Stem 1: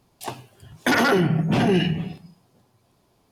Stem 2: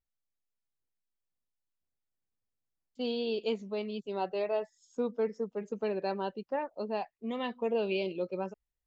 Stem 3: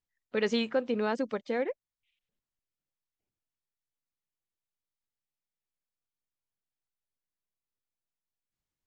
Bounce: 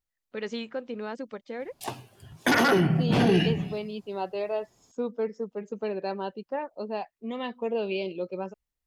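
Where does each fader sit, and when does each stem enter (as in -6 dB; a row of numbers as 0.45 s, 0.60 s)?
-2.5 dB, +1.5 dB, -5.5 dB; 1.60 s, 0.00 s, 0.00 s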